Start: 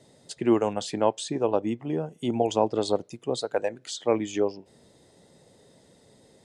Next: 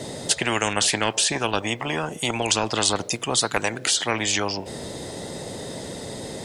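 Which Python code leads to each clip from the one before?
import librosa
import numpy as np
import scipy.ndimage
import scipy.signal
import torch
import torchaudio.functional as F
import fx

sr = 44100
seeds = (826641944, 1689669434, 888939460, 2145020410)

y = fx.spectral_comp(x, sr, ratio=4.0)
y = y * 10.0 ** (3.5 / 20.0)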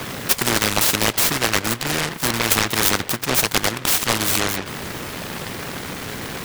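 y = fx.noise_mod_delay(x, sr, seeds[0], noise_hz=1300.0, depth_ms=0.39)
y = y * 10.0 ** (4.0 / 20.0)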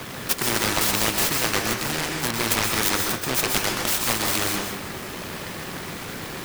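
y = fx.rev_plate(x, sr, seeds[1], rt60_s=0.7, hf_ratio=0.85, predelay_ms=115, drr_db=1.5)
y = y * 10.0 ** (-5.5 / 20.0)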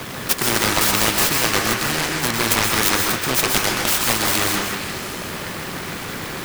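y = fx.echo_stepped(x, sr, ms=154, hz=1300.0, octaves=0.7, feedback_pct=70, wet_db=-4.5)
y = y * 10.0 ** (4.0 / 20.0)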